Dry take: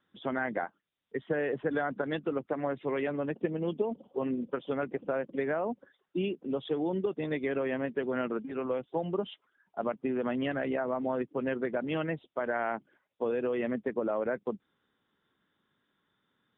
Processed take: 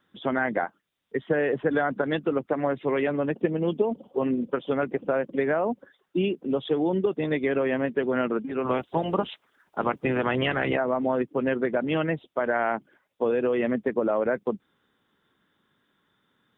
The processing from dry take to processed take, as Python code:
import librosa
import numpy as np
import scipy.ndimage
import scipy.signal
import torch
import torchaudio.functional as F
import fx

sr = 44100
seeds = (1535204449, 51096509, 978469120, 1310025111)

y = fx.spec_clip(x, sr, under_db=15, at=(8.64, 10.76), fade=0.02)
y = y * librosa.db_to_amplitude(6.5)